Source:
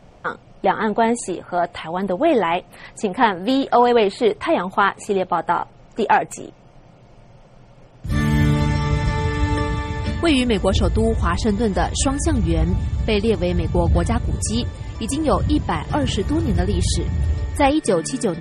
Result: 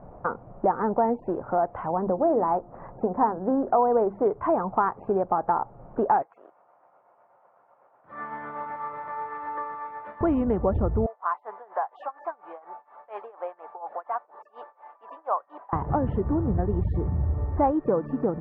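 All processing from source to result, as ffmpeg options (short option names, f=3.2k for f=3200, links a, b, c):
-filter_complex "[0:a]asettb=1/sr,asplit=3[a][b][c];[a]atrim=end=1.884[d];[b]atrim=start=1.88:end=4.26,asetpts=PTS-STARTPTS,afade=t=in:d=0.004:c=qsin,afade=t=out:st=2.376:d=0.004:c=qsin,lowpass=1.5k,bandreject=f=50:t=h:w=6,bandreject=f=100:t=h:w=6,bandreject=f=150:t=h:w=6,bandreject=f=200:t=h:w=6,bandreject=f=250:t=h:w=6,bandreject=f=300:t=h:w=6,bandreject=f=350:t=h:w=6[e];[c]atrim=start=4.256[f];[d][e]acrossfade=d=0.004:c1=hsin:c2=qsin[g];[g][f]acrossfade=d=0.004:c1=qsin:c2=hsin,asettb=1/sr,asplit=3[h][i][j];[h]atrim=end=6.224[k];[i]atrim=start=6.22:end=10.21,asetpts=PTS-STARTPTS,afade=t=in:d=0.004:c=qsin,afade=t=out:st=3.986:d=0.004:c=qsin,highpass=1.1k,tremolo=f=8:d=0.36[l];[j]atrim=start=10.206[m];[k][l]acrossfade=d=0.004:c1=hsin:c2=qsin[n];[n][m]acrossfade=d=0.004:c1=qsin:c2=hsin,asettb=1/sr,asplit=3[o][p][q];[o]atrim=end=11.064[r];[p]atrim=start=11.06:end=15.73,asetpts=PTS-STARTPTS,afade=t=in:d=0.004:c=qsin,afade=t=out:st=4.666:d=0.004:c=qsin,highpass=f=740:w=0.5412,highpass=f=740:w=1.3066,tremolo=f=4.2:d=0.92[s];[q]atrim=start=15.726[t];[r][s]acrossfade=d=0.004:c1=hsin:c2=qsin[u];[u][t]acrossfade=d=0.004:c1=qsin:c2=hsin,lowpass=f=1.2k:w=0.5412,lowpass=f=1.2k:w=1.3066,equalizer=f=950:t=o:w=2.2:g=4.5,acompressor=threshold=-26dB:ratio=2"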